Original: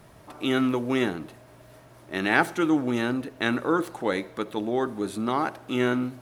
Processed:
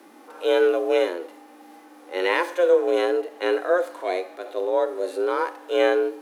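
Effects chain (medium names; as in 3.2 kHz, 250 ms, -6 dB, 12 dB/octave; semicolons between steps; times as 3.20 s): harmonic-percussive split percussive -15 dB; frequency shift +180 Hz; trim +5.5 dB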